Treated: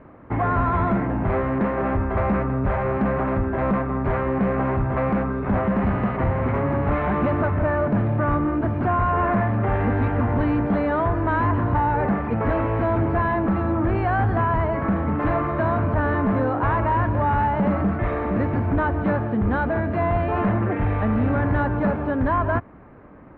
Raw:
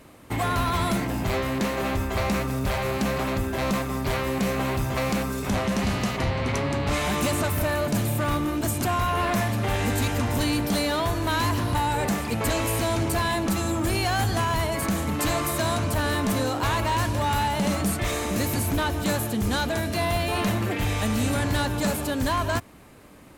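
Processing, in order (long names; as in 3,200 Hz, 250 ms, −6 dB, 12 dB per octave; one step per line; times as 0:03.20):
low-pass filter 1,700 Hz 24 dB per octave
level +4 dB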